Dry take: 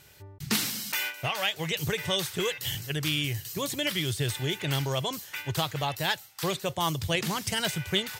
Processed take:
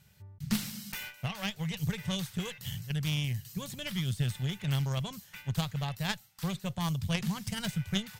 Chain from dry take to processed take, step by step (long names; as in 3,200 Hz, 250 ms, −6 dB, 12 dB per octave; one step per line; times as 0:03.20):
harmonic generator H 2 −7 dB, 3 −17 dB, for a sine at −11 dBFS
low shelf with overshoot 250 Hz +7.5 dB, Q 3
level −6 dB